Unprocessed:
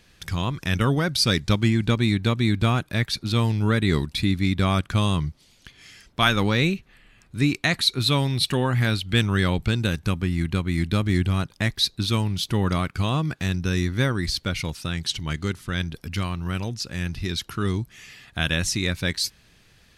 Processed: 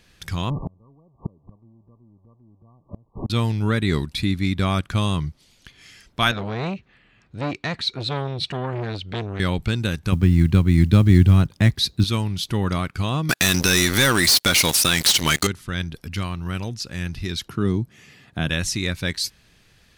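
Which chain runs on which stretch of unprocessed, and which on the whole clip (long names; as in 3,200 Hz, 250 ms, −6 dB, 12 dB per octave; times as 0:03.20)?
0:00.50–0:03.30: converter with a step at zero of −24 dBFS + linear-phase brick-wall low-pass 1,200 Hz + gate with flip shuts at −17 dBFS, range −34 dB
0:06.31–0:09.40: high-pass filter 60 Hz + high-frequency loss of the air 120 metres + saturating transformer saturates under 1,000 Hz
0:10.12–0:12.04: high-pass filter 51 Hz 24 dB per octave + low-shelf EQ 340 Hz +10.5 dB + log-companded quantiser 8 bits
0:13.29–0:15.47: RIAA equalisation recording + leveller curve on the samples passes 5 + downward compressor 4 to 1, threshold −15 dBFS
0:17.48–0:18.50: high-pass filter 120 Hz + tilt shelving filter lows +6.5 dB, about 830 Hz
whole clip: no processing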